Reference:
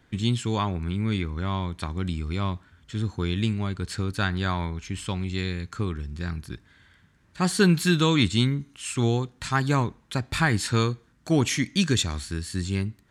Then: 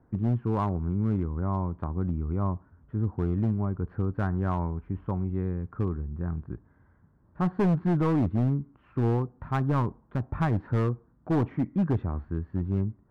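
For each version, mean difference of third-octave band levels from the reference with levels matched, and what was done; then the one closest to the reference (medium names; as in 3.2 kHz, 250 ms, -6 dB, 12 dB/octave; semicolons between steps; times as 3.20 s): 8.5 dB: low-pass 1.1 kHz 24 dB/octave; hard clipper -20 dBFS, distortion -12 dB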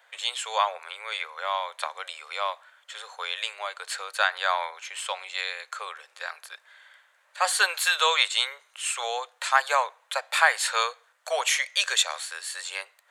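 14.5 dB: steep high-pass 520 Hz 72 dB/octave; peaking EQ 5.3 kHz -6 dB 0.52 oct; trim +5.5 dB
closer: first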